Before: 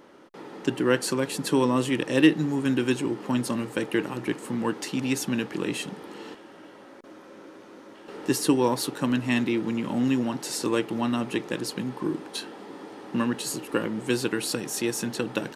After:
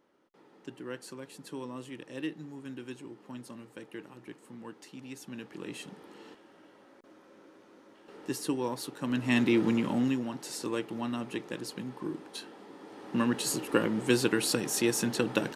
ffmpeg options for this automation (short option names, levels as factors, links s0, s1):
-af "volume=3.16,afade=t=in:st=5.18:d=0.74:silence=0.398107,afade=t=in:st=9:d=0.64:silence=0.251189,afade=t=out:st=9.64:d=0.56:silence=0.316228,afade=t=in:st=12.8:d=0.68:silence=0.398107"